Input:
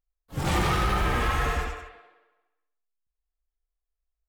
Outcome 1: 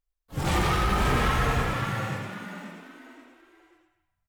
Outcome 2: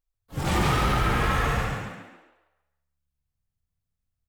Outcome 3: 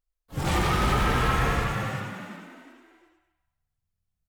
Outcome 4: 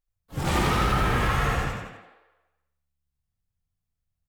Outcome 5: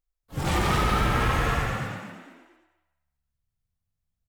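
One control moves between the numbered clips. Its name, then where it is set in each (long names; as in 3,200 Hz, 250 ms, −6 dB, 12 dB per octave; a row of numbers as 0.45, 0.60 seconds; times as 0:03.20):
echo with shifted repeats, delay time: 534, 140, 361, 81, 230 milliseconds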